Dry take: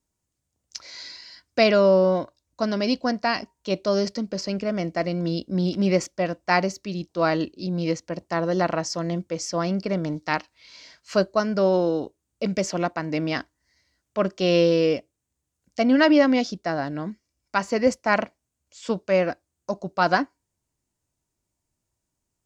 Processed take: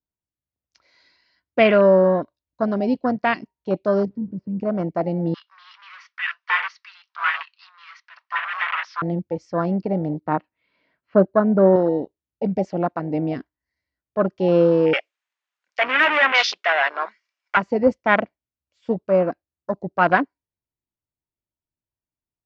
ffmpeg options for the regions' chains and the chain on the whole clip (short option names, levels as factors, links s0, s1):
-filter_complex "[0:a]asettb=1/sr,asplit=3[s0][s1][s2];[s0]atrim=end=4.054[s3];[s1]atrim=start=4.05:end=4.6,asetpts=PTS-STARTPTS,afade=t=in:d=0.004:c=qsin,afade=t=out:st=0.546:d=0.004:c=qsin,aeval=exprs='val(0)+0.5*0.015*sgn(val(0))':c=same,bandpass=f=140:t=q:w=0.95[s4];[s2]atrim=start=4.596[s5];[s3][s4]acrossfade=d=0.004:c1=hsin:c2=qsin[s6];[s6][s5]acrossfade=d=0.004:c1=qsin:c2=hsin,asettb=1/sr,asplit=3[s7][s8][s9];[s7]atrim=end=5.344[s10];[s8]atrim=start=5.34:end=9.02,asetpts=PTS-STARTPTS,afade=t=in:d=0.004:c=qsin,afade=t=out:st=3.676:d=0.004:c=qsin,flanger=delay=1.6:depth=3.6:regen=-70:speed=1.5:shape=triangular,asplit=2[s11][s12];[s12]highpass=f=720:p=1,volume=50.1,asoftclip=type=tanh:threshold=0.335[s13];[s11][s13]amix=inputs=2:normalize=0,lowpass=f=1700:p=1,volume=0.501,asuperpass=centerf=2600:order=12:qfactor=0.52[s14];[s9]atrim=start=9.016[s15];[s10][s14]acrossfade=d=0.004:c1=hsin:c2=qsin[s16];[s16][s15]acrossfade=d=0.004:c1=qsin:c2=hsin,asettb=1/sr,asplit=3[s17][s18][s19];[s17]atrim=end=10.204[s20];[s18]atrim=start=10.2:end=11.76,asetpts=PTS-STARTPTS,afade=t=in:d=0.004:c=qsin,afade=t=out:st=1.556:d=0.004:c=qsin,highpass=210,lowpass=3300,aemphasis=mode=reproduction:type=riaa[s21];[s19]atrim=start=11.756[s22];[s20][s21]acrossfade=d=0.004:c1=hsin:c2=qsin[s23];[s23][s22]acrossfade=d=0.004:c1=qsin:c2=hsin,asettb=1/sr,asplit=3[s24][s25][s26];[s24]atrim=end=14.934[s27];[s25]atrim=start=14.93:end=17.57,asetpts=PTS-STARTPTS,afade=t=in:d=0.004:c=qsin,afade=t=out:st=2.636:d=0.004:c=qsin,asplit=2[s28][s29];[s29]highpass=f=720:p=1,volume=28.2,asoftclip=type=tanh:threshold=0.531[s30];[s28][s30]amix=inputs=2:normalize=0,lowpass=f=3400:p=1,volume=0.501,highpass=1200,aeval=exprs='0.251*(abs(mod(val(0)/0.251+3,4)-2)-1)':c=same[s31];[s26]atrim=start=17.566[s32];[s27][s31]acrossfade=d=0.004:c1=hsin:c2=qsin[s33];[s33][s32]acrossfade=d=0.004:c1=qsin:c2=hsin,afwtdn=0.0501,lowpass=2800,adynamicequalizer=threshold=0.0178:dfrequency=1800:dqfactor=0.7:tfrequency=1800:tqfactor=0.7:attack=5:release=100:ratio=0.375:range=3:mode=boostabove:tftype=highshelf,volume=1.41"